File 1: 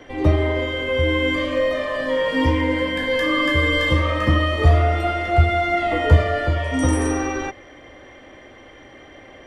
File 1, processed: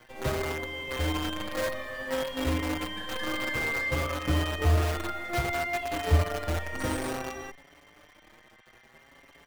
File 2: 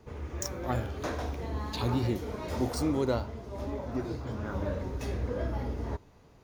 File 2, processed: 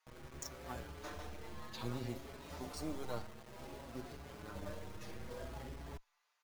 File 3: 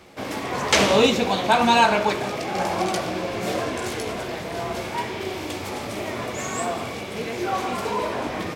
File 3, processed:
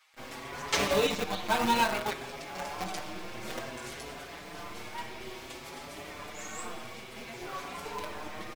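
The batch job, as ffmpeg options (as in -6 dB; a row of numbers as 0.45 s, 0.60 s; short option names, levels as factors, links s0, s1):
-filter_complex "[0:a]bandreject=f=88.51:t=h:w=4,bandreject=f=177.02:t=h:w=4,bandreject=f=265.53:t=h:w=4,acrossover=split=990[s0][s1];[s0]acrusher=bits=4:dc=4:mix=0:aa=0.000001[s2];[s2][s1]amix=inputs=2:normalize=0,asplit=2[s3][s4];[s4]adelay=5.9,afreqshift=0.58[s5];[s3][s5]amix=inputs=2:normalize=1,volume=0.422"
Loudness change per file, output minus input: -10.5 LU, -13.5 LU, -10.5 LU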